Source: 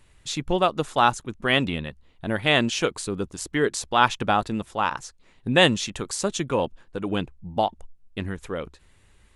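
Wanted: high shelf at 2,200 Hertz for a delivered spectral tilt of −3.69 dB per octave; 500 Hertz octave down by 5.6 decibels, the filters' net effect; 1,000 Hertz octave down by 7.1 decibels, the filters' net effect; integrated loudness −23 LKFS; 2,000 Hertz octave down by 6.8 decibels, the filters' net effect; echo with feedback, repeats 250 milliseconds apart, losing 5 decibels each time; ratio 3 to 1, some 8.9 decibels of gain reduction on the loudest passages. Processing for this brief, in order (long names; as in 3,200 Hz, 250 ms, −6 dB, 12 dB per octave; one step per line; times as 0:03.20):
parametric band 500 Hz −5 dB
parametric band 1,000 Hz −6 dB
parametric band 2,000 Hz −9 dB
high-shelf EQ 2,200 Hz +3 dB
downward compressor 3 to 1, threshold −29 dBFS
repeating echo 250 ms, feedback 56%, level −5 dB
level +9 dB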